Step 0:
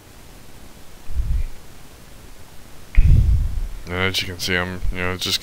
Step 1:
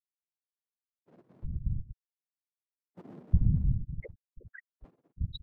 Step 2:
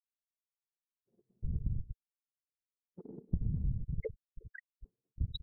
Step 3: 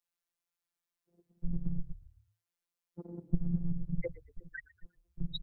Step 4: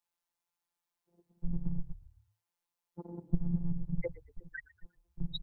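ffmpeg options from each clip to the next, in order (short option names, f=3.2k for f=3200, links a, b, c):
-filter_complex "[0:a]afftfilt=real='re*gte(hypot(re,im),0.708)':imag='im*gte(hypot(re,im),0.708)':win_size=1024:overlap=0.75,afftfilt=real='hypot(re,im)*cos(2*PI*random(0))':imag='hypot(re,im)*sin(2*PI*random(1))':win_size=512:overlap=0.75,acrossover=split=310[a][b];[a]adelay=360[c];[c][b]amix=inputs=2:normalize=0,volume=-4.5dB"
-af "anlmdn=0.158,equalizer=f=440:w=5.7:g=12,acompressor=threshold=-30dB:ratio=16,volume=2dB"
-filter_complex "[0:a]afftfilt=real='hypot(re,im)*cos(PI*b)':imag='0':win_size=1024:overlap=0.75,acrossover=split=180|530|1600[a][b][c][d];[c]crystalizer=i=6:c=0[e];[a][b][e][d]amix=inputs=4:normalize=0,asplit=4[f][g][h][i];[g]adelay=118,afreqshift=-36,volume=-20dB[j];[h]adelay=236,afreqshift=-72,volume=-28.9dB[k];[i]adelay=354,afreqshift=-108,volume=-37.7dB[l];[f][j][k][l]amix=inputs=4:normalize=0,volume=7dB"
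-af "equalizer=f=900:w=3.1:g=10"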